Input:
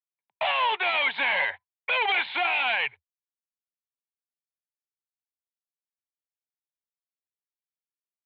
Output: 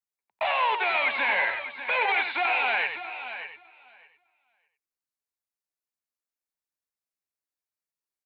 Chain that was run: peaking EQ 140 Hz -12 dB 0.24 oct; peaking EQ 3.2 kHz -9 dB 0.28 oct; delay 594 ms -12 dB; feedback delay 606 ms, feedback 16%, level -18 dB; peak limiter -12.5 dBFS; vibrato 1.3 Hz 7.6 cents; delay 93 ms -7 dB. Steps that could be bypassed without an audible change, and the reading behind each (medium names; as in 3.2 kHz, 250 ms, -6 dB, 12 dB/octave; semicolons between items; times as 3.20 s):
peak limiter -12.5 dBFS: peak at its input -14.5 dBFS